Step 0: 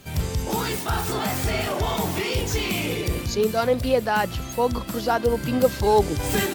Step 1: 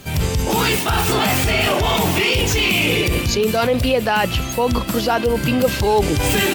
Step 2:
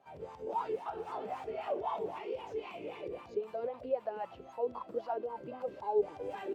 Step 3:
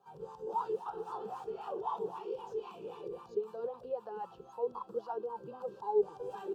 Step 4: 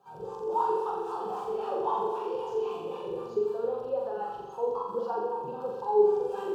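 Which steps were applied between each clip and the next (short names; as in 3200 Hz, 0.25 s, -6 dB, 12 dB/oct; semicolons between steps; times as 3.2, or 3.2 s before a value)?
dynamic EQ 2700 Hz, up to +8 dB, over -46 dBFS, Q 2.3; in parallel at +1.5 dB: negative-ratio compressor -25 dBFS, ratio -1
wah 3.8 Hz 410–1000 Hz, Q 6.3; gain -9 dB
fixed phaser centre 420 Hz, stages 8; gain +1 dB
flutter echo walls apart 7.4 m, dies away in 1 s; gain +4.5 dB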